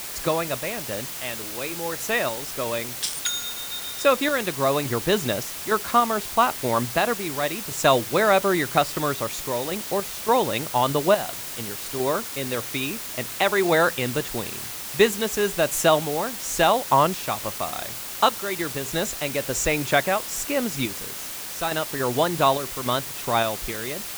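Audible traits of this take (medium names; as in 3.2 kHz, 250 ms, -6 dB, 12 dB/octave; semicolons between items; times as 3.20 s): random-step tremolo, depth 70%; a quantiser's noise floor 6-bit, dither triangular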